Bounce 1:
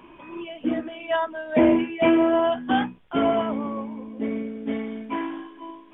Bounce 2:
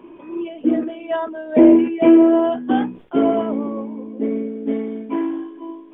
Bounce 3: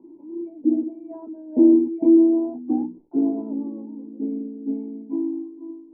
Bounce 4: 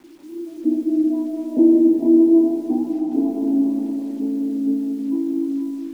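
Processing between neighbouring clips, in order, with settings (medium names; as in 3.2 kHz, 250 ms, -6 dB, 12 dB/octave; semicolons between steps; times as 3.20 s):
peaking EQ 360 Hz +15 dB 1.8 oct; decay stretcher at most 140 dB/s; trim -5.5 dB
cascade formant filter u
bit crusher 9-bit; reverberation RT60 3.6 s, pre-delay 115 ms, DRR 0 dB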